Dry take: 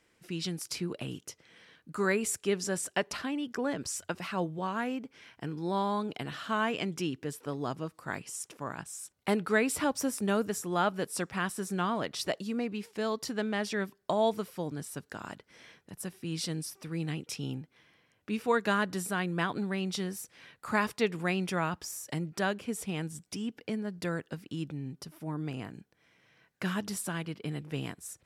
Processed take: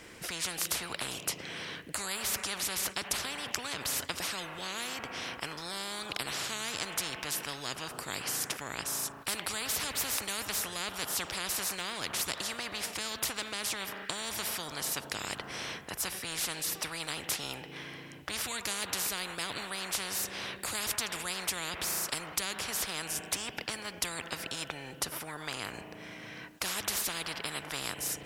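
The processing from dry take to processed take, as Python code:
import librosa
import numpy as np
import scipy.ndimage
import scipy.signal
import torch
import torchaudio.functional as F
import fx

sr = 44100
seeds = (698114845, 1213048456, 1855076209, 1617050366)

y = fx.rev_spring(x, sr, rt60_s=2.4, pass_ms=(36,), chirp_ms=70, drr_db=19.0)
y = fx.spectral_comp(y, sr, ratio=10.0)
y = F.gain(torch.from_numpy(y), 4.5).numpy()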